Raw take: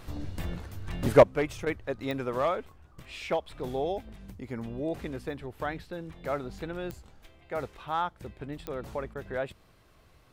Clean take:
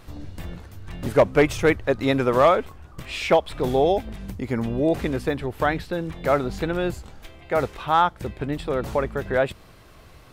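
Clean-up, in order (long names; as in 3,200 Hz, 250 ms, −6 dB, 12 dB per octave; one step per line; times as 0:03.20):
click removal
repair the gap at 0:01.65/0:09.14, 12 ms
level correction +11.5 dB, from 0:01.23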